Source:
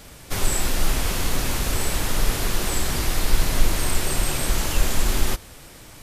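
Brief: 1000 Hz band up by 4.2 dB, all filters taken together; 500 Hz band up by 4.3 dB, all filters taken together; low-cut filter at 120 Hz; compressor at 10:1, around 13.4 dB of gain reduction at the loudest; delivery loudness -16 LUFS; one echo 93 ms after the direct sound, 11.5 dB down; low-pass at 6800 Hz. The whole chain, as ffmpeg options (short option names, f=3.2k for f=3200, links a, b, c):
-af "highpass=120,lowpass=6.8k,equalizer=f=500:t=o:g=4.5,equalizer=f=1k:t=o:g=4,acompressor=threshold=-37dB:ratio=10,aecho=1:1:93:0.266,volume=23.5dB"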